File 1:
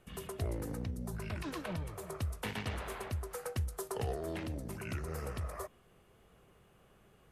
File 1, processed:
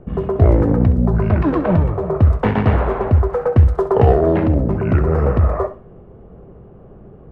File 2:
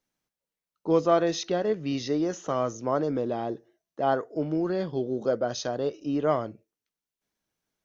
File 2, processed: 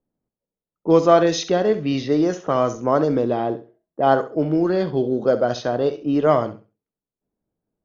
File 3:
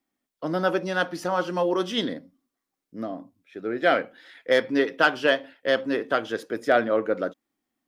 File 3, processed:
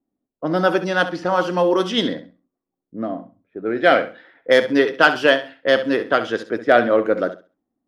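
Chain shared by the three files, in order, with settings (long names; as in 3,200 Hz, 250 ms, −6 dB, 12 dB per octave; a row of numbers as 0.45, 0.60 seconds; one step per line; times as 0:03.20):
low-pass that shuts in the quiet parts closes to 530 Hz, open at −21 dBFS
flutter between parallel walls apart 11.4 metres, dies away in 0.31 s
floating-point word with a short mantissa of 8 bits
normalise the peak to −1.5 dBFS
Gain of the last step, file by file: +24.5, +8.0, +6.0 decibels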